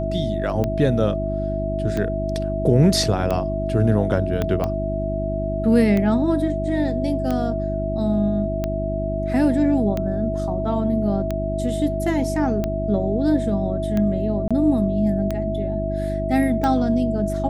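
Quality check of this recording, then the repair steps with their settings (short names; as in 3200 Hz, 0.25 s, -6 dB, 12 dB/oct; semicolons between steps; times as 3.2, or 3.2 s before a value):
hum 50 Hz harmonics 7 -26 dBFS
tick 45 rpm -12 dBFS
tone 650 Hz -25 dBFS
4.42 pop -10 dBFS
14.48–14.51 gap 26 ms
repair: de-click; de-hum 50 Hz, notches 7; notch 650 Hz, Q 30; interpolate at 14.48, 26 ms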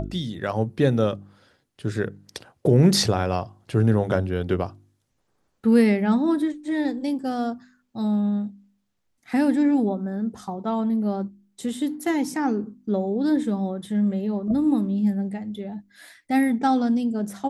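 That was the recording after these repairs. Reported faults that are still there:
4.42 pop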